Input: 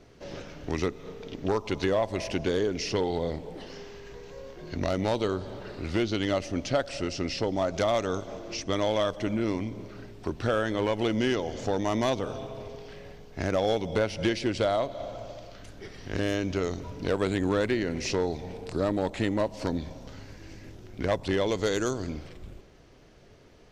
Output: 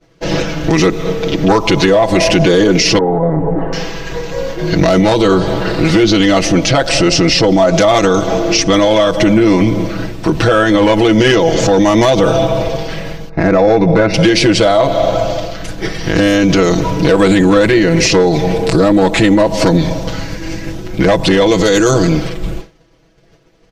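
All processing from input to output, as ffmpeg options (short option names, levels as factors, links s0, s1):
-filter_complex "[0:a]asettb=1/sr,asplit=3[s0][s1][s2];[s0]atrim=end=2.984[s3];[s1]atrim=start=2.98:end=3.73,asetpts=PTS-STARTPTS,afade=t=in:d=0.004:c=qsin,afade=t=out:st=0.746:d=0.004:c=qsin,lowpass=f=1400:w=0.5412,lowpass=f=1400:w=1.3066,aecho=1:1:7.2:0.51,atrim=end_sample=33075,acompressor=threshold=0.0224:ratio=5:attack=3.2:release=140:knee=1:detection=peak[s4];[s2]atrim=start=3.726[s5];[s3][s4]acrossfade=d=0.004:c1=hsin:c2=qsin[s6];[s6][s5]acrossfade=d=0.004:c1=qsin:c2=hsin,asettb=1/sr,asplit=3[s7][s8][s9];[s7]atrim=end=13.294[s10];[s8]atrim=start=13.29:end=14.14,asetpts=PTS-STARTPTS,afade=t=in:d=0.004:c=qsin,afade=t=out:st=0.846:d=0.004:c=qsin,asuperstop=centerf=3100:order=12:qfactor=4.5,adynamicsmooth=sensitivity=1:basefreq=2300[s11];[s9]atrim=start=14.136[s12];[s10][s11]acrossfade=d=0.004:c1=hsin:c2=qsin[s13];[s13][s12]acrossfade=d=0.004:c1=qsin:c2=hsin,agate=range=0.0224:threshold=0.00891:ratio=3:detection=peak,aecho=1:1:6.1:1,alimiter=level_in=14.1:limit=0.891:release=50:level=0:latency=1,volume=0.891"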